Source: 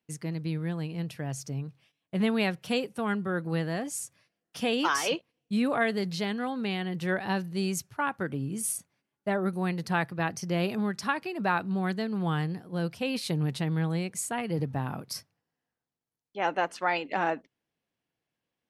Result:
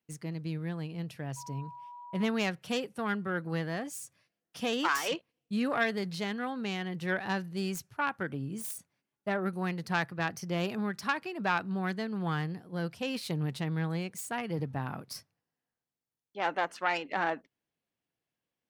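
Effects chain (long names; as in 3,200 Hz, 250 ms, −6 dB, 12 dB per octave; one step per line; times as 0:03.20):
phase distortion by the signal itself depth 0.09 ms
dynamic equaliser 1,500 Hz, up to +4 dB, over −43 dBFS, Q 1.2
0:01.36–0:02.24: steady tone 970 Hz −40 dBFS
level −4 dB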